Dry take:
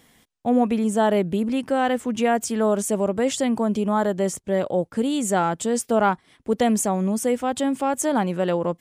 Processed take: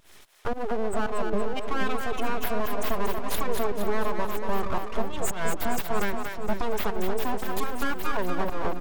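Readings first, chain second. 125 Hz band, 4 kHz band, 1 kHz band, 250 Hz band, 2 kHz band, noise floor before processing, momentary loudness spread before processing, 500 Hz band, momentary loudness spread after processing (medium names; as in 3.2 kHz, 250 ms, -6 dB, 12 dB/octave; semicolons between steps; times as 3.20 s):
-7.5 dB, -4.0 dB, -5.5 dB, -11.5 dB, -1.0 dB, -62 dBFS, 4 LU, -7.5 dB, 3 LU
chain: companding laws mixed up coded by mu; high-pass 66 Hz 24 dB/octave; spectral gate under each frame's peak -20 dB strong; peaking EQ 280 Hz -11.5 dB 0.36 oct; comb 4.9 ms, depth 44%; dynamic bell 1.5 kHz, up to -7 dB, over -34 dBFS, Q 0.73; compression, threshold -23 dBFS, peak gain reduction 8 dB; full-wave rectifier; vibrato 1.8 Hz 42 cents; volume shaper 113 bpm, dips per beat 1, -19 dB, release 171 ms; two-band feedback delay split 470 Hz, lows 475 ms, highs 234 ms, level -5 dB; trim +2 dB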